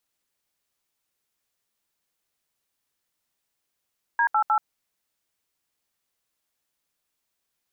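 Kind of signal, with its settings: DTMF "D88", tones 82 ms, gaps 72 ms, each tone -20.5 dBFS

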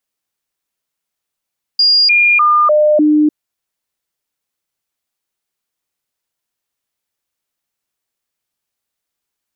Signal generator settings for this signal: stepped sine 4.83 kHz down, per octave 1, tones 5, 0.30 s, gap 0.00 s -7 dBFS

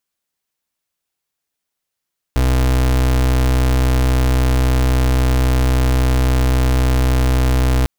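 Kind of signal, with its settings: pulse 63.7 Hz, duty 34% -14 dBFS 5.50 s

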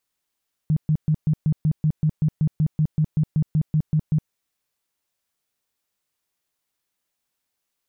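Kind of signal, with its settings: tone bursts 154 Hz, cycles 10, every 0.19 s, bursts 19, -15.5 dBFS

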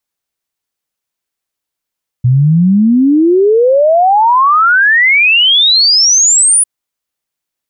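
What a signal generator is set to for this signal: log sweep 120 Hz -> 10 kHz 4.40 s -5 dBFS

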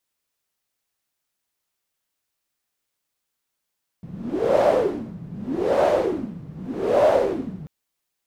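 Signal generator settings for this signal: wind-like swept noise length 3.64 s, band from 160 Hz, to 610 Hz, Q 6.2, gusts 3, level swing 19 dB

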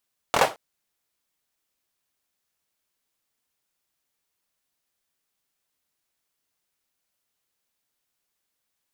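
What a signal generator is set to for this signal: hand clap length 0.22 s, apart 24 ms, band 670 Hz, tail 0.25 s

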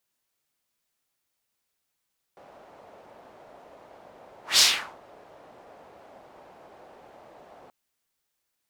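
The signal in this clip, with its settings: whoosh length 5.33 s, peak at 2.22 s, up 0.16 s, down 0.41 s, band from 650 Hz, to 5 kHz, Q 2, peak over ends 34 dB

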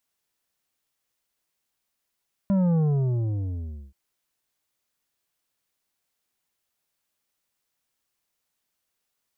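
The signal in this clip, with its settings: sub drop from 200 Hz, over 1.43 s, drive 8.5 dB, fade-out 1.17 s, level -19.5 dB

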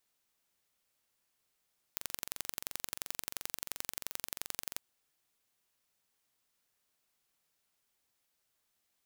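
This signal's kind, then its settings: pulse train 22.9 per s, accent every 2, -8 dBFS 2.83 s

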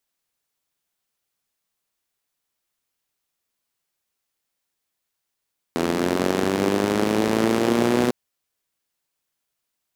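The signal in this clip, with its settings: four-cylinder engine model, changing speed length 2.35 s, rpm 2500, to 3700, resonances 240/350 Hz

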